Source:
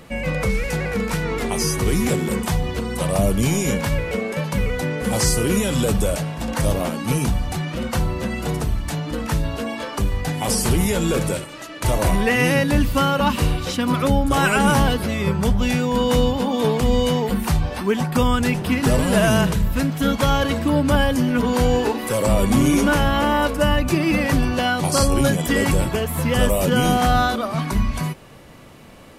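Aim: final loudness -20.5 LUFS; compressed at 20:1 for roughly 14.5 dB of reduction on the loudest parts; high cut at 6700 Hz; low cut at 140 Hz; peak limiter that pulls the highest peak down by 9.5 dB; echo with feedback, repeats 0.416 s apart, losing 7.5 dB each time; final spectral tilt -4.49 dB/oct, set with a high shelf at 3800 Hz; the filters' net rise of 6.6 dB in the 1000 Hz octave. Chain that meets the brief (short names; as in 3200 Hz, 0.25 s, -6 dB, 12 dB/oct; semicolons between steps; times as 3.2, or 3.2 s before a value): HPF 140 Hz; LPF 6700 Hz; bell 1000 Hz +8 dB; high shelf 3800 Hz +6.5 dB; compressor 20:1, threshold -24 dBFS; limiter -20 dBFS; feedback echo 0.416 s, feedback 42%, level -7.5 dB; gain +8 dB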